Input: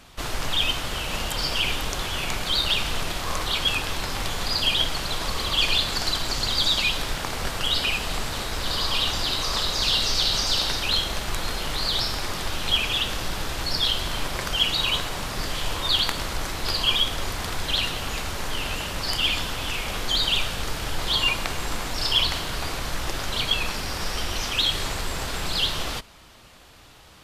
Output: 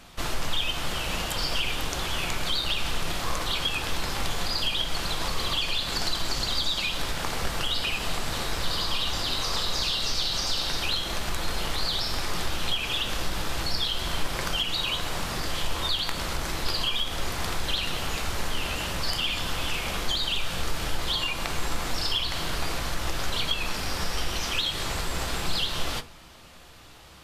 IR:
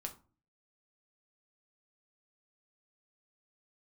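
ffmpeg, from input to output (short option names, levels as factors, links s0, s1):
-filter_complex "[0:a]acompressor=threshold=0.0631:ratio=6,asplit=2[s0][s1];[1:a]atrim=start_sample=2205[s2];[s1][s2]afir=irnorm=-1:irlink=0,volume=1.5[s3];[s0][s3]amix=inputs=2:normalize=0,volume=0.501"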